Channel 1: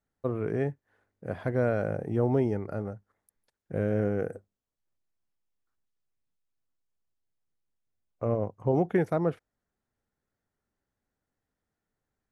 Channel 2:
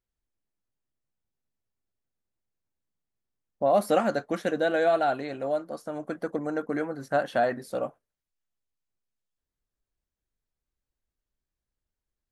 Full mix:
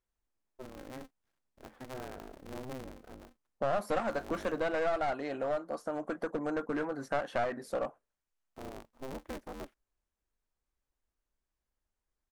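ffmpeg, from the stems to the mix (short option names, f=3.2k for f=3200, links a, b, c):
-filter_complex "[0:a]acrusher=bits=10:mix=0:aa=0.000001,aeval=exprs='val(0)*sgn(sin(2*PI*130*n/s))':c=same,adelay=350,volume=-17dB[a];[1:a]equalizer=f=125:t=o:w=1:g=-6,equalizer=f=1k:t=o:w=1:g=4,equalizer=f=4k:t=o:w=1:g=-4,aeval=exprs='clip(val(0),-1,0.0473)':c=same,lowpass=9.1k,volume=0.5dB[b];[a][b]amix=inputs=2:normalize=0,acompressor=threshold=-33dB:ratio=2"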